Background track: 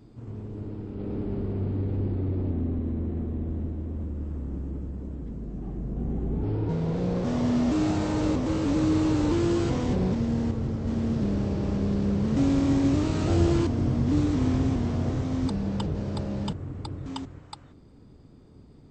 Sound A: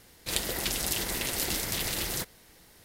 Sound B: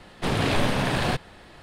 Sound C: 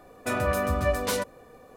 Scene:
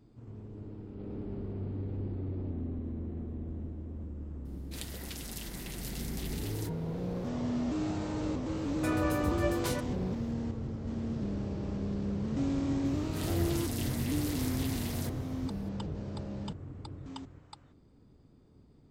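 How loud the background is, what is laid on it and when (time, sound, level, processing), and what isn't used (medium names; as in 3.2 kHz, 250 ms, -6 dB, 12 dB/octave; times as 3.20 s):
background track -8.5 dB
4.45 s: add A -13.5 dB
8.57 s: add C -7.5 dB
12.85 s: add A -10.5 dB + transient shaper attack -10 dB, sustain +5 dB
not used: B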